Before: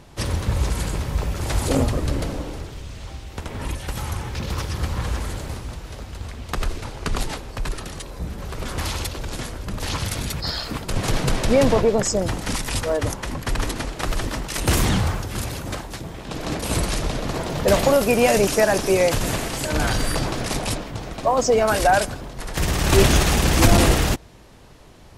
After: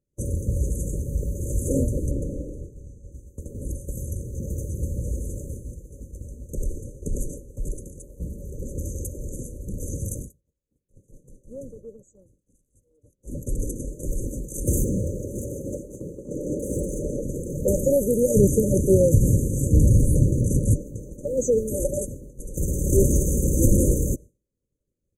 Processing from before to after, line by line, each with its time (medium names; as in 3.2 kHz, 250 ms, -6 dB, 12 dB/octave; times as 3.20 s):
2.11–3.12 s: treble shelf 7.1 kHz -11 dB
5.59–6.14 s: echo throw 300 ms, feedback 15%, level -8.5 dB
8.50–9.05 s: peaking EQ 10 kHz -6 dB
10.14–13.34 s: dip -17 dB, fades 0.18 s
14.84–17.23 s: overdrive pedal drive 19 dB, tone 1.4 kHz, clips at -10 dBFS
18.35–20.76 s: peaking EQ 90 Hz +14 dB 2.6 oct
whole clip: FFT band-reject 600–6000 Hz; expander -29 dBFS; trim -2.5 dB